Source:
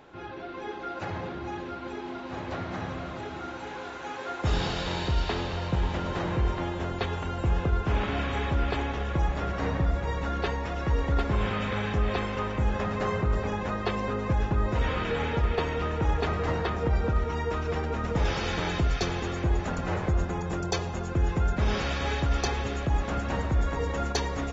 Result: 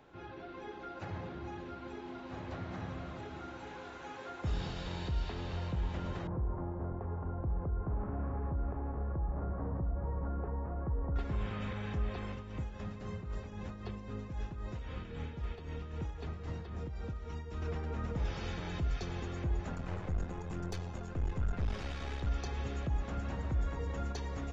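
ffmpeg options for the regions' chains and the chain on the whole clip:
-filter_complex "[0:a]asettb=1/sr,asplit=3[a][b][c];[a]atrim=end=6.274[d];[b]atrim=start=6.27:end=11.16,asetpts=PTS-STARTPTS,afade=t=in:d=0.004:c=qsin,afade=t=out:st=4.886:d=0.004:c=qsin,lowpass=f=1.2k:w=0.5412,lowpass=f=1.2k:w=1.3066,acompressor=threshold=-25dB:ratio=6:attack=3.2:release=140:knee=1:detection=peak[e];[c]atrim=start=11.156[f];[d][e]acrossfade=d=0.004:c1=hsin:c2=qsin[g];[g][f]acrossfade=d=0.004:c1=qsin:c2=hsin,asettb=1/sr,asplit=3[h][i][j];[h]atrim=end=12.324[k];[i]atrim=start=12.32:end=17.62,asetpts=PTS-STARTPTS,afade=t=in:d=0.004:c=qsin,afade=t=out:st=5.296:d=0.004:c=qsin,acrossover=split=320|2900[l][m][n];[l]acompressor=threshold=-31dB:ratio=4[o];[m]acompressor=threshold=-41dB:ratio=4[p];[n]acompressor=threshold=-50dB:ratio=4[q];[o][p][q]amix=inputs=3:normalize=0,tremolo=f=3.8:d=0.54[r];[j]atrim=start=17.616[s];[k][r]acrossfade=d=0.004:c1=hsin:c2=qsin[t];[t][s]acrossfade=d=0.004:c1=qsin:c2=hsin,asettb=1/sr,asplit=3[u][v][w];[u]atrim=end=19.744[x];[v]atrim=start=19.74:end=22.27,asetpts=PTS-STARTPTS,afade=t=in:d=0.004:c=qsin,afade=t=out:st=2.526:d=0.004:c=qsin,aphaser=in_gain=1:out_gain=1:delay=4.5:decay=0.23:speed=1.1:type=sinusoidal,aeval=exprs='(tanh(15.8*val(0)+0.7)-tanh(0.7))/15.8':c=same[y];[w]atrim=start=22.266[z];[x][y]acrossfade=d=0.004:c1=hsin:c2=qsin[aa];[aa][z]acrossfade=d=0.004:c1=qsin:c2=hsin,alimiter=limit=-20.5dB:level=0:latency=1:release=245,lowshelf=f=200:g=5,acrossover=split=270[ab][ac];[ac]acompressor=threshold=-35dB:ratio=2[ad];[ab][ad]amix=inputs=2:normalize=0,volume=-8.5dB"

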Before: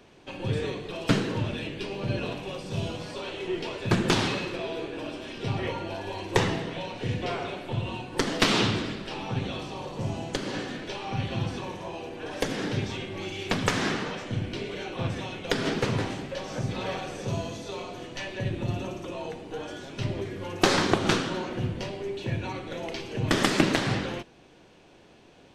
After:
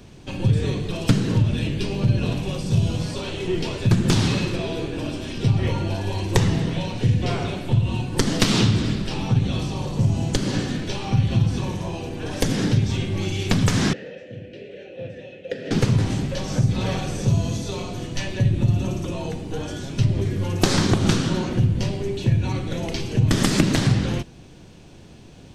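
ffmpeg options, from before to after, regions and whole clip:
-filter_complex "[0:a]asettb=1/sr,asplit=3[a][b][c];[a]atrim=end=13.934[d];[b]atrim=start=13.93:end=15.71,asetpts=PTS-STARTPTS,afade=t=in:d=0.004:c=qsin,afade=t=out:st=1.776:d=0.004:c=qsin,asplit=3[e][f][g];[e]bandpass=f=530:t=q:w=8,volume=0dB[h];[f]bandpass=f=1.84k:t=q:w=8,volume=-6dB[i];[g]bandpass=f=2.48k:t=q:w=8,volume=-9dB[j];[h][i][j]amix=inputs=3:normalize=0,lowshelf=f=500:g=5[k];[c]atrim=start=15.706[l];[d][k]acrossfade=d=0.004:c1=hsin:c2=qsin[m];[m][l]acrossfade=d=0.004:c1=qsin:c2=hsin,bass=f=250:g=15,treble=f=4k:g=9,acompressor=threshold=-18dB:ratio=3,volume=2.5dB"

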